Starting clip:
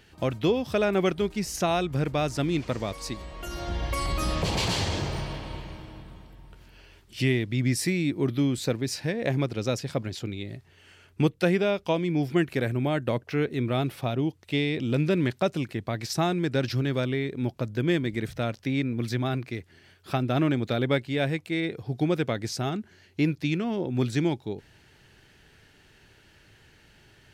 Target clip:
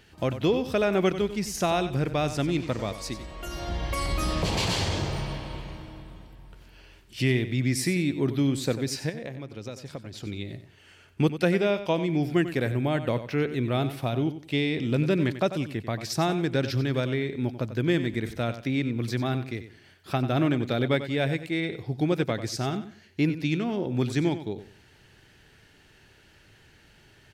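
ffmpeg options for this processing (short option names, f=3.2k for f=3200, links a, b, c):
-filter_complex "[0:a]asettb=1/sr,asplit=3[a][b][c];[a]atrim=end=9.094[d];[b]atrim=start=9.09:end=10.26,asetpts=PTS-STARTPTS,afade=t=in:d=0.004:c=qsin,afade=t=out:st=1.166:d=0.004:c=qsin,acompressor=threshold=-34dB:ratio=10[e];[c]atrim=start=10.256[f];[d][e]acrossfade=d=0.004:c1=hsin:c2=qsin[g];[g][f]acrossfade=d=0.004:c1=qsin:c2=hsin,asplit=2[h][i];[i]aecho=0:1:93|186|279:0.251|0.0628|0.0157[j];[h][j]amix=inputs=2:normalize=0"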